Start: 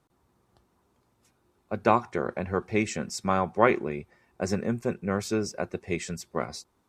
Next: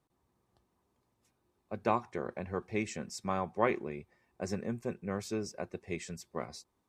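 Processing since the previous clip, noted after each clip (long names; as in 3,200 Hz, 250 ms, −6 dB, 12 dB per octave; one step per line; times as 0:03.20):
notch filter 1,400 Hz, Q 9.9
level −8 dB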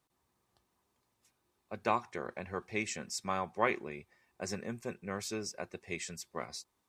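tilt shelving filter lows −5 dB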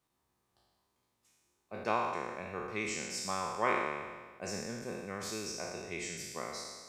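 peak hold with a decay on every bin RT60 1.45 s
level −4 dB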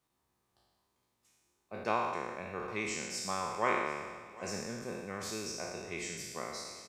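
repeating echo 749 ms, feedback 46%, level −20 dB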